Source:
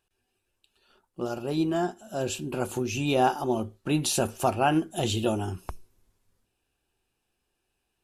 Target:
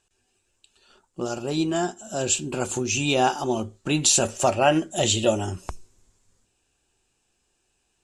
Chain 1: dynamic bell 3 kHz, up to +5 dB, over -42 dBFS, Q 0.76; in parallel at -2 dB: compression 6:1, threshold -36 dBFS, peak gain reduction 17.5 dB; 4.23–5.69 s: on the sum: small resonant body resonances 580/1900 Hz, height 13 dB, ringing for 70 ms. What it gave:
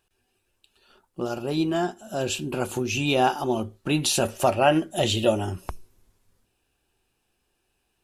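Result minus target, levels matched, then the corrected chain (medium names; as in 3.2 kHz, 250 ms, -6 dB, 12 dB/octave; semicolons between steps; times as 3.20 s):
8 kHz band -7.0 dB
dynamic bell 3 kHz, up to +5 dB, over -42 dBFS, Q 0.76; resonant low-pass 7.4 kHz, resonance Q 4.1; in parallel at -2 dB: compression 6:1, threshold -36 dBFS, peak gain reduction 18 dB; 4.23–5.69 s: on the sum: small resonant body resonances 580/1900 Hz, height 13 dB, ringing for 70 ms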